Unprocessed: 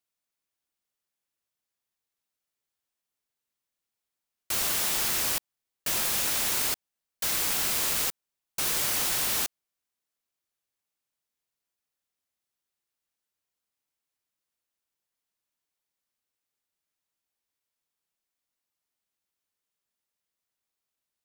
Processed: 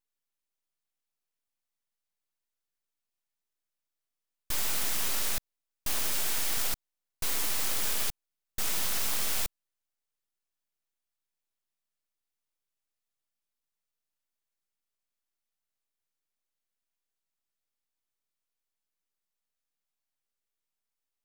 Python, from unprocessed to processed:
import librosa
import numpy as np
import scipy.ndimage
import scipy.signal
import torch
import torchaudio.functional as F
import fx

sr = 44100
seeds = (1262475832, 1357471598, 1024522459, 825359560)

y = np.abs(x)